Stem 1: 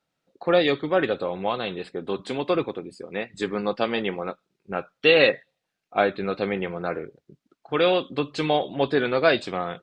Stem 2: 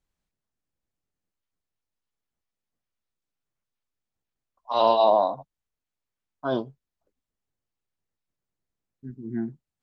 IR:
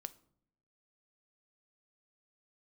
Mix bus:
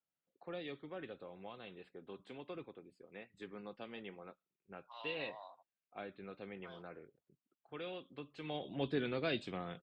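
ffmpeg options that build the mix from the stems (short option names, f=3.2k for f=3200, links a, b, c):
-filter_complex "[0:a]volume=-9dB,afade=t=in:st=8.43:d=0.28:silence=0.251189[a];[1:a]tremolo=f=0.72:d=0.51,highpass=1.3k,adelay=200,volume=-13dB[b];[a][b]amix=inputs=2:normalize=0,acrossover=split=340|3000[c][d][e];[d]acompressor=threshold=-51dB:ratio=2[f];[c][f][e]amix=inputs=3:normalize=0,highshelf=f=3.8k:t=q:w=1.5:g=-7"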